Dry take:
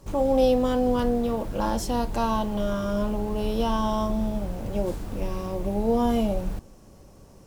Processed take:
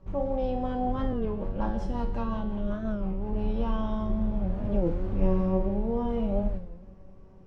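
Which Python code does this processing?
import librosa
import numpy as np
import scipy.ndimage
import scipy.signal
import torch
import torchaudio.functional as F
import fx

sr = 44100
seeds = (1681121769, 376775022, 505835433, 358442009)

y = scipy.signal.sosfilt(scipy.signal.butter(2, 2300.0, 'lowpass', fs=sr, output='sos'), x)
y = fx.low_shelf(y, sr, hz=170.0, db=8.5)
y = y + 0.34 * np.pad(y, (int(5.2 * sr / 1000.0), 0))[:len(y)]
y = fx.rider(y, sr, range_db=10, speed_s=0.5)
y = fx.rotary(y, sr, hz=5.5, at=(1.14, 3.33))
y = fx.comb_fb(y, sr, f0_hz=94.0, decay_s=0.67, harmonics='all', damping=0.0, mix_pct=80)
y = fx.echo_feedback(y, sr, ms=175, feedback_pct=39, wet_db=-14.5)
y = fx.record_warp(y, sr, rpm=33.33, depth_cents=160.0)
y = y * 10.0 ** (3.5 / 20.0)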